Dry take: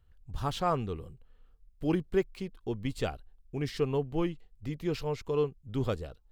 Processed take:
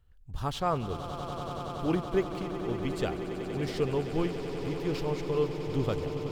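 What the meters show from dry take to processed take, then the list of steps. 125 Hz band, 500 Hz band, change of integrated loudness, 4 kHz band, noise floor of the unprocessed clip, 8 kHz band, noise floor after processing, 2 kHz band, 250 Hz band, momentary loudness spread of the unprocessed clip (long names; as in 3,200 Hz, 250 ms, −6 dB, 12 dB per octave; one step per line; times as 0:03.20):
+1.5 dB, +2.0 dB, +1.5 dB, +2.0 dB, −62 dBFS, +2.0 dB, −42 dBFS, +2.5 dB, +1.5 dB, 11 LU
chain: echo that builds up and dies away 94 ms, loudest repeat 8, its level −13 dB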